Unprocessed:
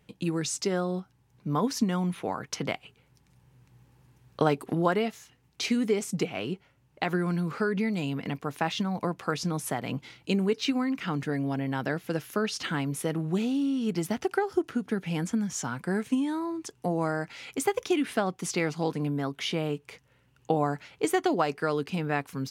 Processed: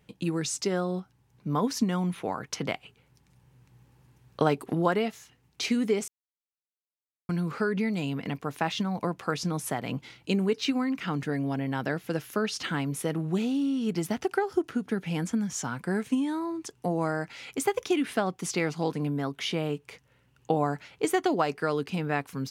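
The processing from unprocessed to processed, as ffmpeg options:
ffmpeg -i in.wav -filter_complex "[0:a]asplit=3[link_01][link_02][link_03];[link_01]atrim=end=6.08,asetpts=PTS-STARTPTS,afade=type=out:start_time=6.076:duration=0.004:curve=hsin[link_04];[link_02]atrim=start=6.08:end=7.29,asetpts=PTS-STARTPTS,volume=0[link_05];[link_03]atrim=start=7.29,asetpts=PTS-STARTPTS,afade=type=in:duration=0.004:curve=hsin[link_06];[link_04][link_05][link_06]concat=n=3:v=0:a=1" out.wav

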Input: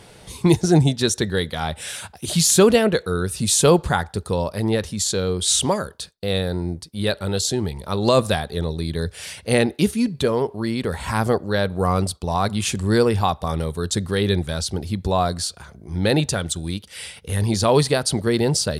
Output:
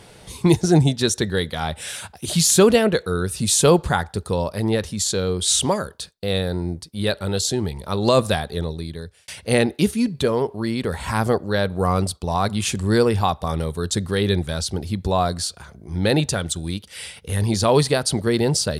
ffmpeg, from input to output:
ffmpeg -i in.wav -filter_complex "[0:a]asplit=2[link_01][link_02];[link_01]atrim=end=9.28,asetpts=PTS-STARTPTS,afade=type=out:start_time=8.53:duration=0.75[link_03];[link_02]atrim=start=9.28,asetpts=PTS-STARTPTS,afade=type=in:duration=0.004:curve=hsin[link_04];[link_03][link_04]concat=n=2:v=0:a=1" out.wav

